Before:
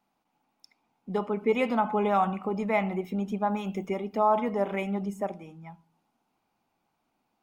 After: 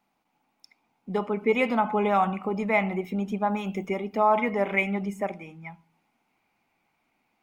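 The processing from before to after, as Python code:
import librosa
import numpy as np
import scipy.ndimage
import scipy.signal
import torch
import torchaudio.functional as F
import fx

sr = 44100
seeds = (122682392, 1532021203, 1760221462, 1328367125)

y = fx.peak_eq(x, sr, hz=2200.0, db=fx.steps((0.0, 5.0), (4.19, 12.5)), octaves=0.55)
y = y * 10.0 ** (1.5 / 20.0)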